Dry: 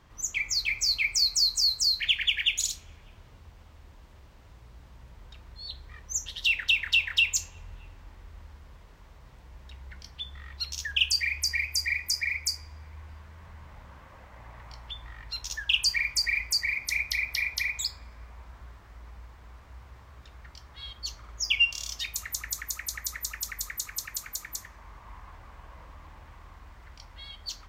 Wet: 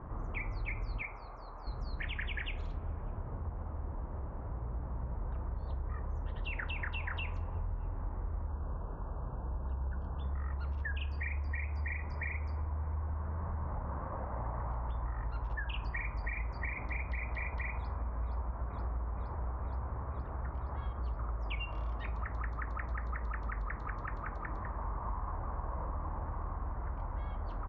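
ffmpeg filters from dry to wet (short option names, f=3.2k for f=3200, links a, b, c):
-filter_complex "[0:a]asettb=1/sr,asplit=3[a][b][c];[a]atrim=end=1.024[d];[b]atrim=start=1.02:end=1.67,asetpts=PTS-STARTPTS,afade=t=in:d=0.004:c=qsin,afade=t=out:st=0.646:d=0.004:c=qsin,acrossover=split=440 2200:gain=0.224 1 0.224[e][f][g];[e][f][g]amix=inputs=3:normalize=0[h];[c]atrim=start=1.666[i];[d][h]acrossfade=d=0.004:c1=hsin:c2=qsin[j];[j][i]acrossfade=d=0.004:c1=qsin:c2=hsin,asettb=1/sr,asplit=3[k][l][m];[k]atrim=end=8.484[n];[l]atrim=start=8.48:end=10.24,asetpts=PTS-STARTPTS,afade=t=in:d=0.004:c=qsin,afade=t=out:st=1.756:d=0.004:c=qsin,asuperstop=centerf=2100:order=12:qfactor=2.6[o];[m]atrim=start=10.236[p];[n][o]acrossfade=d=0.004:c1=hsin:c2=qsin[q];[q][p]acrossfade=d=0.004:c1=qsin:c2=hsin,asplit=2[r][s];[s]afade=t=in:st=17.76:d=0.01,afade=t=out:st=18.58:d=0.01,aecho=0:1:470|940|1410|1880|2350|2820|3290|3760|4230|4700|5170|5640:0.501187|0.40095|0.32076|0.256608|0.205286|0.164229|0.131383|0.105107|0.0840853|0.0672682|0.0538146|0.0430517[t];[r][t]amix=inputs=2:normalize=0,lowpass=f=1.2k:w=0.5412,lowpass=f=1.2k:w=1.3066,acompressor=threshold=-46dB:ratio=6,volume=13dB"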